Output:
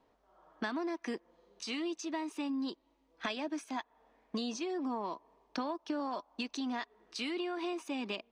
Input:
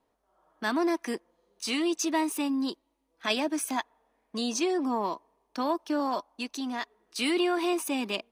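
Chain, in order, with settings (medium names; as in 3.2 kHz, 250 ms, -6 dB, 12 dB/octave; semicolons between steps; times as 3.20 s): treble shelf 4.9 kHz +8 dB; compression 12:1, threshold -37 dBFS, peak gain reduction 16.5 dB; distance through air 150 m; trim +4.5 dB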